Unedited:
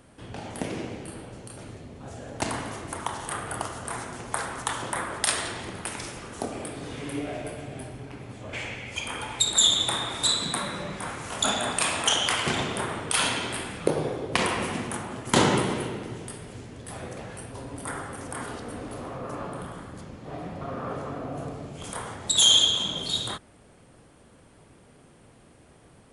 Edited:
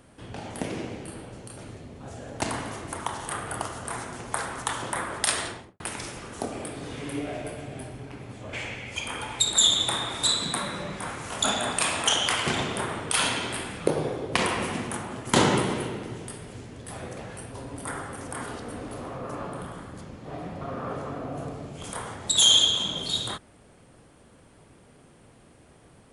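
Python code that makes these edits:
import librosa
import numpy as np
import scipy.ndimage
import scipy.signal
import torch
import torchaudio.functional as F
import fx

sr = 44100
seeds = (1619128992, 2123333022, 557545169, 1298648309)

y = fx.studio_fade_out(x, sr, start_s=5.41, length_s=0.39)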